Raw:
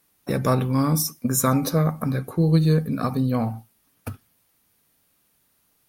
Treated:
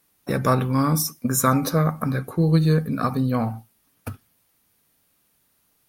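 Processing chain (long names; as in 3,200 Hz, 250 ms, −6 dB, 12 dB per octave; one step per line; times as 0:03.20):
dynamic equaliser 1,400 Hz, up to +5 dB, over −42 dBFS, Q 1.4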